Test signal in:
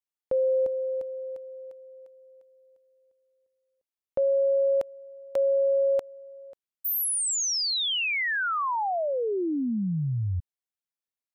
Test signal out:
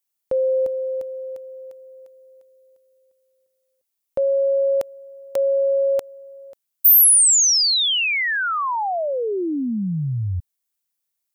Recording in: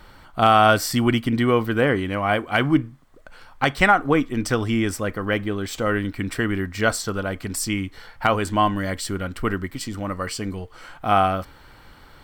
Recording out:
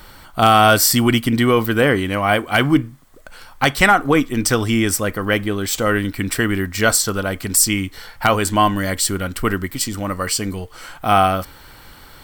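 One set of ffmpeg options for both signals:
-af "apsyclip=2.99,crystalizer=i=2:c=0,volume=0.531"

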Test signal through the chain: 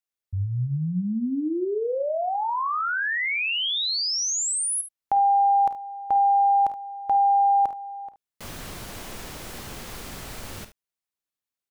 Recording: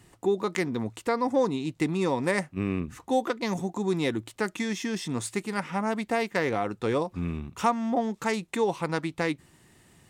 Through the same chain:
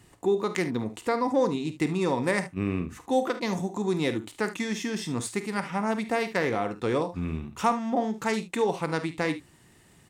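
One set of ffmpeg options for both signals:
-af "aecho=1:1:33|50|73:0.133|0.224|0.178"

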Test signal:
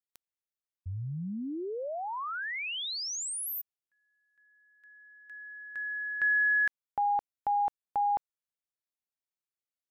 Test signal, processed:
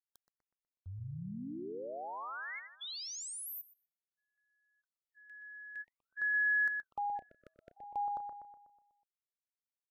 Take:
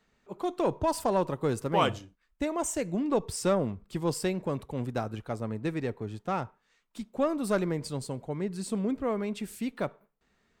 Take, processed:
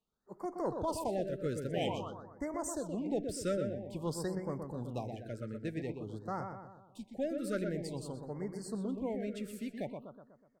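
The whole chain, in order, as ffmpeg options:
-filter_complex "[0:a]agate=range=0.355:threshold=0.00126:ratio=16:release=145:detection=rms,asplit=2[s0][s1];[s1]adelay=123,lowpass=f=2500:p=1,volume=0.531,asplit=2[s2][s3];[s3]adelay=123,lowpass=f=2500:p=1,volume=0.52,asplit=2[s4][s5];[s5]adelay=123,lowpass=f=2500:p=1,volume=0.52,asplit=2[s6][s7];[s7]adelay=123,lowpass=f=2500:p=1,volume=0.52,asplit=2[s8][s9];[s9]adelay=123,lowpass=f=2500:p=1,volume=0.52,asplit=2[s10][s11];[s11]adelay=123,lowpass=f=2500:p=1,volume=0.52,asplit=2[s12][s13];[s13]adelay=123,lowpass=f=2500:p=1,volume=0.52[s14];[s0][s2][s4][s6][s8][s10][s12][s14]amix=inputs=8:normalize=0,afftfilt=real='re*(1-between(b*sr/1024,870*pow(3200/870,0.5+0.5*sin(2*PI*0.5*pts/sr))/1.41,870*pow(3200/870,0.5+0.5*sin(2*PI*0.5*pts/sr))*1.41))':imag='im*(1-between(b*sr/1024,870*pow(3200/870,0.5+0.5*sin(2*PI*0.5*pts/sr))/1.41,870*pow(3200/870,0.5+0.5*sin(2*PI*0.5*pts/sr))*1.41))':win_size=1024:overlap=0.75,volume=0.398"

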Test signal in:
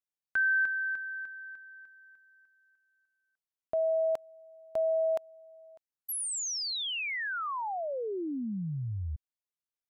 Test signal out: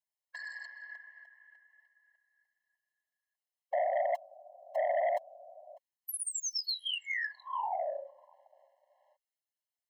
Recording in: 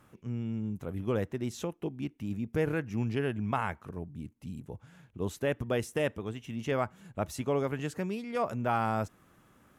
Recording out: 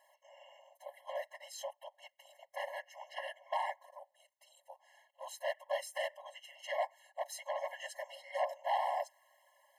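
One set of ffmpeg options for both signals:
-af "afftfilt=real='hypot(re,im)*cos(2*PI*random(0))':imag='hypot(re,im)*sin(2*PI*random(1))':win_size=512:overlap=0.75,aeval=exprs='0.0944*sin(PI/2*2.51*val(0)/0.0944)':c=same,afftfilt=real='re*eq(mod(floor(b*sr/1024/550),2),1)':imag='im*eq(mod(floor(b*sr/1024/550),2),1)':win_size=1024:overlap=0.75,volume=0.562"

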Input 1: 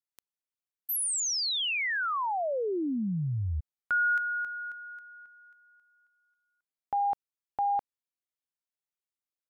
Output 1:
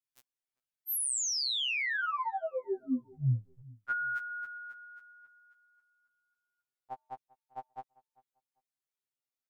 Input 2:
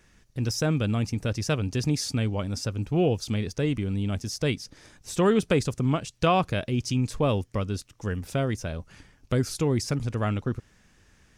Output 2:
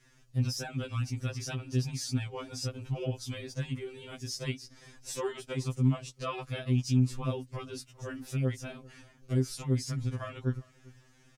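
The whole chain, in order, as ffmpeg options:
-filter_complex "[0:a]adynamicequalizer=threshold=0.01:dfrequency=580:dqfactor=0.84:tfrequency=580:tqfactor=0.84:attack=5:release=100:ratio=0.375:range=2.5:mode=cutabove:tftype=bell,alimiter=limit=0.0944:level=0:latency=1:release=417,asplit=2[s0][s1];[s1]adelay=395,lowpass=f=2300:p=1,volume=0.0708,asplit=2[s2][s3];[s3]adelay=395,lowpass=f=2300:p=1,volume=0.22[s4];[s2][s4]amix=inputs=2:normalize=0[s5];[s0][s5]amix=inputs=2:normalize=0,afftfilt=real='re*2.45*eq(mod(b,6),0)':imag='im*2.45*eq(mod(b,6),0)':win_size=2048:overlap=0.75"

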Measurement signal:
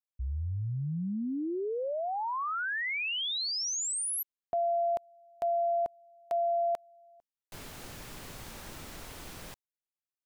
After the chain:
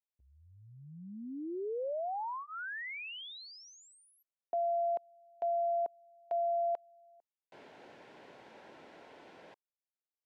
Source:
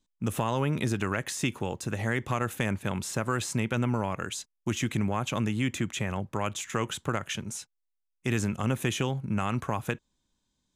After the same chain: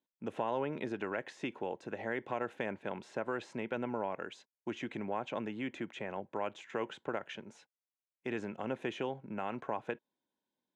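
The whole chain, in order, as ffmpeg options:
-af "highpass=490,lowpass=2900,tiltshelf=f=820:g=6.5,bandreject=f=1200:w=5,volume=0.708"

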